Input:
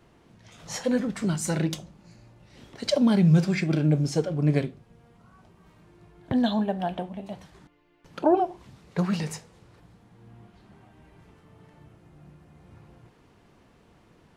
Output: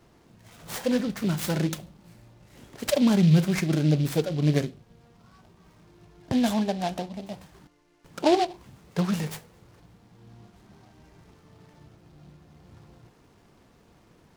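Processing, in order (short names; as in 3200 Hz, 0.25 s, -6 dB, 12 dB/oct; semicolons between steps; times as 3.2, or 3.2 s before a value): noise-modulated delay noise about 3200 Hz, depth 0.054 ms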